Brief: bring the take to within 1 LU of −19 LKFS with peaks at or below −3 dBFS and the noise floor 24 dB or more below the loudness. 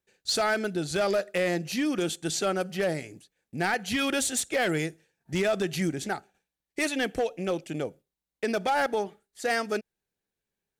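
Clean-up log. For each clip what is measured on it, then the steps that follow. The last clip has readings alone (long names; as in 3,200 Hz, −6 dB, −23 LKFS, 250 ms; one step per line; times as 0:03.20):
share of clipped samples 1.2%; peaks flattened at −20.0 dBFS; integrated loudness −28.5 LKFS; sample peak −20.0 dBFS; target loudness −19.0 LKFS
→ clipped peaks rebuilt −20 dBFS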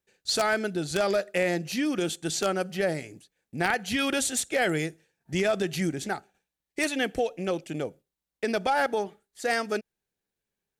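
share of clipped samples 0.0%; integrated loudness −28.0 LKFS; sample peak −11.0 dBFS; target loudness −19.0 LKFS
→ level +9 dB
brickwall limiter −3 dBFS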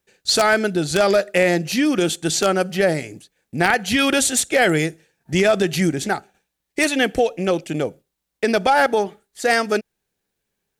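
integrated loudness −19.0 LKFS; sample peak −3.0 dBFS; background noise floor −79 dBFS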